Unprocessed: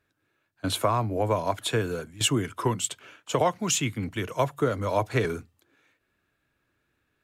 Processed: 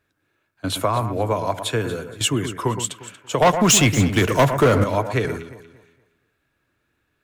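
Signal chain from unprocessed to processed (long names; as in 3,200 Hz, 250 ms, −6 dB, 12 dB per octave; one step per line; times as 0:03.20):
0:03.42–0:04.84: leveller curve on the samples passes 3
on a send: delay that swaps between a low-pass and a high-pass 117 ms, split 2,100 Hz, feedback 53%, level −9 dB
on the sum: level +3 dB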